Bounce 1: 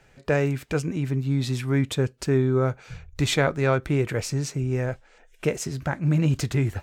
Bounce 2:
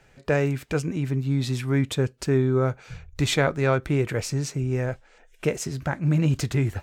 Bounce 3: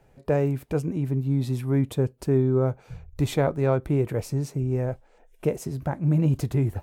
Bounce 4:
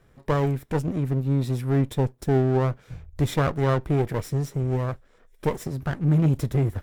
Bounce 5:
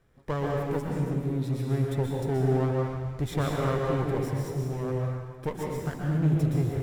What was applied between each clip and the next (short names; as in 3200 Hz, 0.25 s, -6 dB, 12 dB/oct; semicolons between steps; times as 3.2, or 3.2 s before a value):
nothing audible
band shelf 3200 Hz -10.5 dB 2.9 oct
minimum comb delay 0.54 ms; gain +1.5 dB
plate-style reverb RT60 1.5 s, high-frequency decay 0.9×, pre-delay 0.11 s, DRR -2 dB; gain -7.5 dB